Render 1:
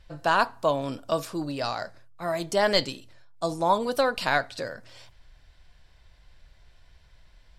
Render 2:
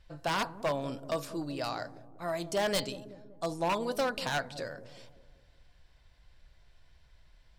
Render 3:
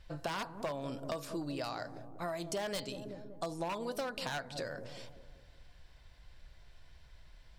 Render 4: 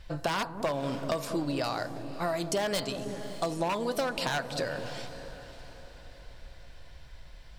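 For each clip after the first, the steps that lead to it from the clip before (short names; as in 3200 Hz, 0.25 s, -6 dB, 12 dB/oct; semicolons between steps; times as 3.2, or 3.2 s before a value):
wavefolder -17.5 dBFS; dark delay 0.19 s, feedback 49%, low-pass 480 Hz, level -9.5 dB; gain -5.5 dB
compressor 6:1, threshold -39 dBFS, peak gain reduction 12.5 dB; gain +3.5 dB
diffused feedback echo 0.585 s, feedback 45%, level -13.5 dB; gain +7.5 dB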